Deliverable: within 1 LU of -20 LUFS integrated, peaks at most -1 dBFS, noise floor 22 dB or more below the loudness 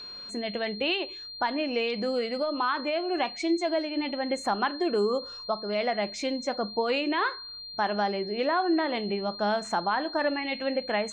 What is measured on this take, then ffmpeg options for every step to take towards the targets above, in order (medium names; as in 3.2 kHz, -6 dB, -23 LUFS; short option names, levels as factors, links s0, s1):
steady tone 4.2 kHz; tone level -39 dBFS; loudness -28.5 LUFS; peak level -16.0 dBFS; loudness target -20.0 LUFS
-> -af "bandreject=f=4200:w=30"
-af "volume=2.66"